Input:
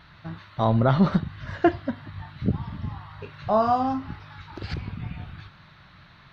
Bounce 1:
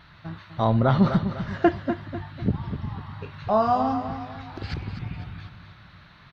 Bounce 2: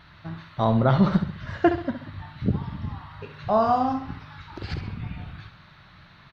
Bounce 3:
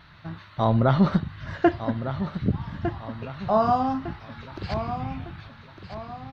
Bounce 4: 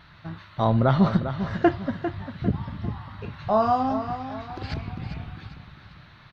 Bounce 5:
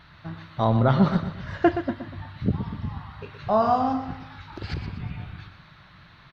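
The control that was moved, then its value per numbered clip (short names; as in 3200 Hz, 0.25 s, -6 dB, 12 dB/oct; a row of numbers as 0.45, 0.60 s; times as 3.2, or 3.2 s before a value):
feedback echo, time: 250, 67, 1205, 399, 122 ms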